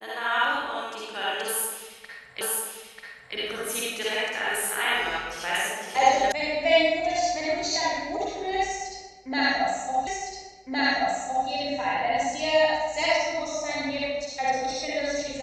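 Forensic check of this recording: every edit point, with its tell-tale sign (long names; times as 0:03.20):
0:02.41: the same again, the last 0.94 s
0:06.32: cut off before it has died away
0:10.07: the same again, the last 1.41 s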